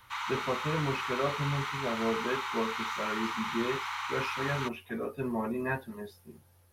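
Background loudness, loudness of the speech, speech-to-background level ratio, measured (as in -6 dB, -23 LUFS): -35.0 LUFS, -35.0 LUFS, 0.0 dB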